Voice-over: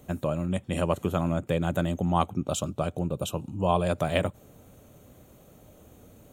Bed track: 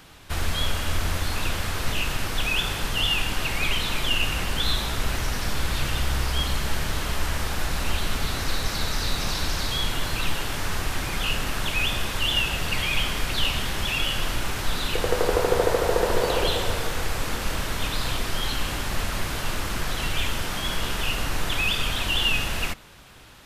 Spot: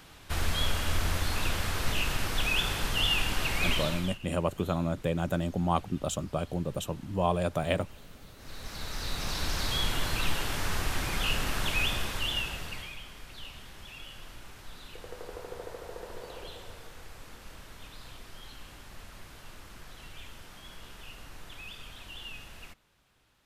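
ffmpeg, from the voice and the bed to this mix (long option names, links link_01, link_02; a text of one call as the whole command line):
ffmpeg -i stem1.wav -i stem2.wav -filter_complex "[0:a]adelay=3550,volume=-3dB[link_01];[1:a]volume=19dB,afade=type=out:start_time=3.72:duration=0.46:silence=0.0749894,afade=type=in:start_time=8.37:duration=1.38:silence=0.0749894,afade=type=out:start_time=11.74:duration=1.24:silence=0.141254[link_02];[link_01][link_02]amix=inputs=2:normalize=0" out.wav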